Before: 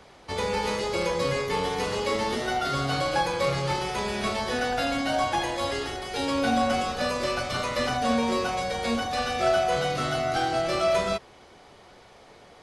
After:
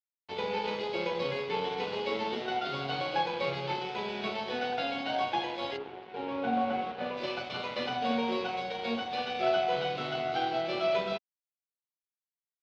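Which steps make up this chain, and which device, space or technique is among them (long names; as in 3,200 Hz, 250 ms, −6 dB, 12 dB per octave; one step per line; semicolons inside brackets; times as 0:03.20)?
0:05.76–0:07.16: low-pass filter 1,200 Hz → 2,100 Hz 12 dB per octave
blown loudspeaker (dead-zone distortion −38 dBFS; loudspeaker in its box 220–3,800 Hz, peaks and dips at 280 Hz −6 dB, 580 Hz −6 dB, 1,200 Hz −10 dB, 1,800 Hz −9 dB)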